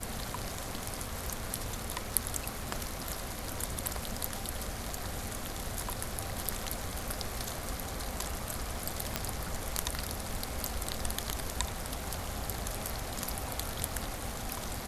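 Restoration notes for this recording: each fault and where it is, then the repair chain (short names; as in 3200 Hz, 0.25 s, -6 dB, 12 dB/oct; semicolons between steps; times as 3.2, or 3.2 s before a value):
crackle 45/s -43 dBFS
9.16 pop -11 dBFS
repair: de-click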